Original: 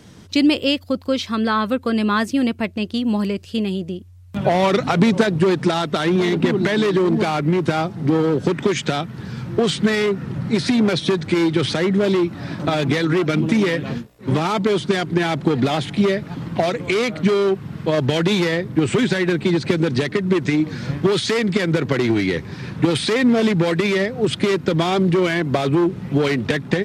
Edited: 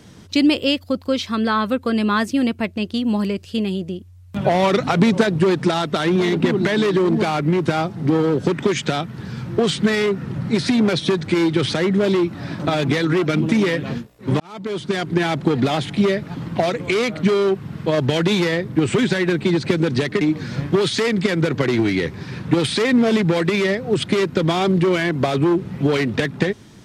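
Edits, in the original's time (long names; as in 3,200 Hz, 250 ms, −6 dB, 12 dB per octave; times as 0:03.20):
0:14.40–0:15.13: fade in
0:20.21–0:20.52: remove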